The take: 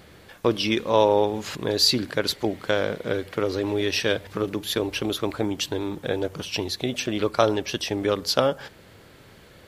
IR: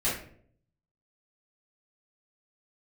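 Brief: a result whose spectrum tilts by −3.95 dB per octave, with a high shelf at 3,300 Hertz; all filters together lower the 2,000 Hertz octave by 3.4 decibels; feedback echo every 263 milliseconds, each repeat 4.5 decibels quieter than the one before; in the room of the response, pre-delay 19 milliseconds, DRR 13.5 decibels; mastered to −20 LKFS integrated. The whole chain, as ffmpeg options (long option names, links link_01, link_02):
-filter_complex "[0:a]equalizer=frequency=2000:width_type=o:gain=-6,highshelf=frequency=3300:gain=3,aecho=1:1:263|526|789|1052|1315|1578|1841|2104|2367:0.596|0.357|0.214|0.129|0.0772|0.0463|0.0278|0.0167|0.01,asplit=2[link_01][link_02];[1:a]atrim=start_sample=2205,adelay=19[link_03];[link_02][link_03]afir=irnorm=-1:irlink=0,volume=-23dB[link_04];[link_01][link_04]amix=inputs=2:normalize=0,volume=2.5dB"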